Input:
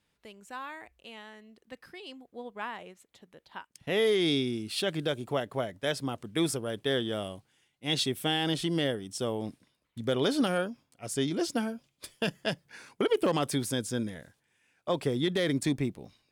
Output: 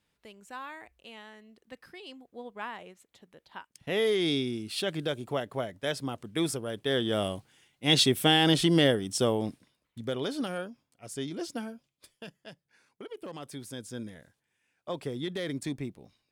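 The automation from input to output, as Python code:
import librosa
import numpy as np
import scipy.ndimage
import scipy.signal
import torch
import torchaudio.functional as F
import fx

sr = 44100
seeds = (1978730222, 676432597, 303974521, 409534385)

y = fx.gain(x, sr, db=fx.line((6.84, -1.0), (7.25, 6.5), (9.21, 6.5), (10.29, -6.0), (11.73, -6.0), (12.38, -16.5), (13.14, -16.5), (14.08, -6.0)))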